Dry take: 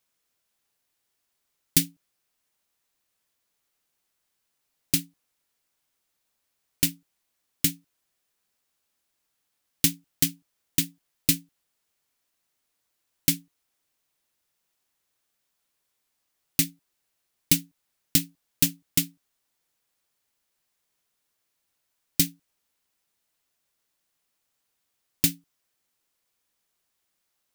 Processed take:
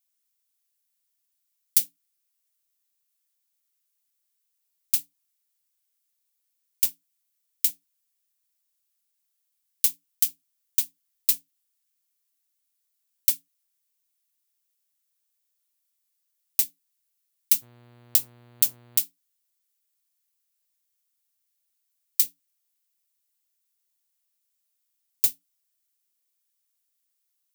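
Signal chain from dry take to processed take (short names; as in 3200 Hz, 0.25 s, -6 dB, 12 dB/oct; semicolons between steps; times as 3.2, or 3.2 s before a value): tilt +4.5 dB/oct; 17.61–18.98 buzz 120 Hz, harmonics 39, -39 dBFS -6 dB/oct; gain -15 dB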